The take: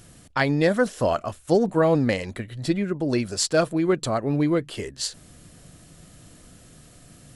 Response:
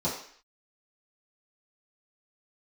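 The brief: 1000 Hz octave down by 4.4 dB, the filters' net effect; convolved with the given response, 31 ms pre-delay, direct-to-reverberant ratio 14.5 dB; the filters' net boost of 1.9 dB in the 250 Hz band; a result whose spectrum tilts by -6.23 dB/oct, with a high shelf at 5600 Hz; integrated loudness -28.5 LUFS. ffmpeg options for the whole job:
-filter_complex "[0:a]equalizer=f=250:t=o:g=3,equalizer=f=1k:t=o:g=-6.5,highshelf=f=5.6k:g=-5,asplit=2[a][b];[1:a]atrim=start_sample=2205,adelay=31[c];[b][c]afir=irnorm=-1:irlink=0,volume=-23.5dB[d];[a][d]amix=inputs=2:normalize=0,volume=-5.5dB"

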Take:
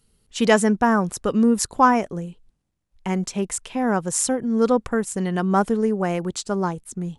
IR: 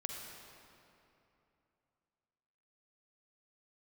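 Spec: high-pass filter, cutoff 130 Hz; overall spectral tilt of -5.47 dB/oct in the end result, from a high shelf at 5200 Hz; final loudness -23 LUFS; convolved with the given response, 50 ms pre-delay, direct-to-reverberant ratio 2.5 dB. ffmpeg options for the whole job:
-filter_complex "[0:a]highpass=130,highshelf=f=5.2k:g=-7.5,asplit=2[a][b];[1:a]atrim=start_sample=2205,adelay=50[c];[b][c]afir=irnorm=-1:irlink=0,volume=-2.5dB[d];[a][d]amix=inputs=2:normalize=0,volume=-2.5dB"

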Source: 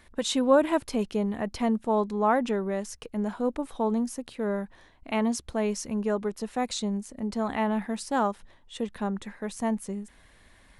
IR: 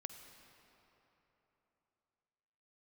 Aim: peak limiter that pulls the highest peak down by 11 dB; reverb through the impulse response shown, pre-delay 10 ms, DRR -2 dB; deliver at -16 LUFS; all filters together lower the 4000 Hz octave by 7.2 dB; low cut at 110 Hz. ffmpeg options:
-filter_complex "[0:a]highpass=110,equalizer=f=4k:t=o:g=-9,alimiter=limit=-20.5dB:level=0:latency=1,asplit=2[a][b];[1:a]atrim=start_sample=2205,adelay=10[c];[b][c]afir=irnorm=-1:irlink=0,volume=5.5dB[d];[a][d]amix=inputs=2:normalize=0,volume=11dB"

